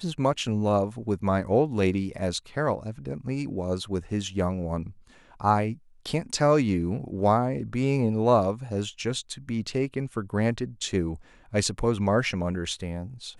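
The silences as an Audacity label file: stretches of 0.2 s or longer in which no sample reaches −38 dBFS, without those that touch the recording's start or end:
4.910000	5.400000	silence
5.740000	6.060000	silence
11.160000	11.530000	silence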